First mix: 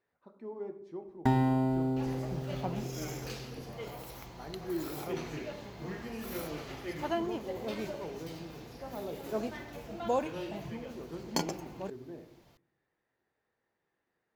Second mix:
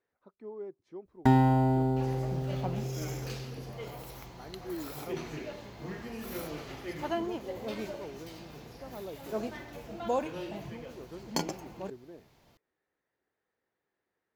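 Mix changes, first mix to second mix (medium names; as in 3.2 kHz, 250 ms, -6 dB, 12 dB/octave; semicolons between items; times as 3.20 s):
first sound +4.0 dB; reverb: off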